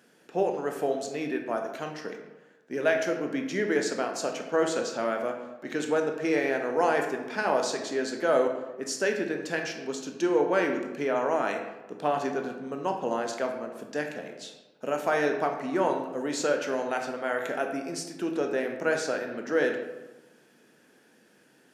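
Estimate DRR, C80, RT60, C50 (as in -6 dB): 3.0 dB, 8.5 dB, 1.1 s, 6.0 dB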